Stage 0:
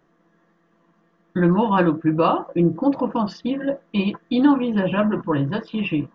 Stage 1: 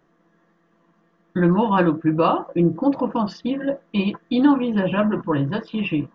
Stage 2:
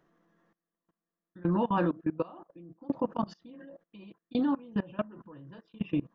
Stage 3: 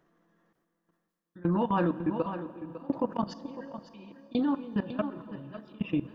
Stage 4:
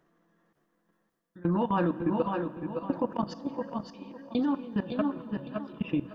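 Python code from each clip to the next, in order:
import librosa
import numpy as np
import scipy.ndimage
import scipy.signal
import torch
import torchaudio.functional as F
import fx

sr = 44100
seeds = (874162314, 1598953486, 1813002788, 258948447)

y1 = x
y2 = fx.tremolo_shape(y1, sr, shape='saw_down', hz=0.69, depth_pct=90)
y2 = fx.dynamic_eq(y2, sr, hz=2300.0, q=0.9, threshold_db=-41.0, ratio=4.0, max_db=-4)
y2 = fx.level_steps(y2, sr, step_db=22)
y2 = F.gain(torch.from_numpy(y2), -4.0).numpy()
y3 = y2 + 10.0 ** (-12.5 / 20.0) * np.pad(y2, (int(553 * sr / 1000.0), 0))[:len(y2)]
y3 = fx.transient(y3, sr, attack_db=1, sustain_db=6)
y3 = fx.rev_plate(y3, sr, seeds[0], rt60_s=3.8, hf_ratio=1.0, predelay_ms=0, drr_db=15.0)
y4 = y3 + 10.0 ** (-5.5 / 20.0) * np.pad(y3, (int(567 * sr / 1000.0), 0))[:len(y3)]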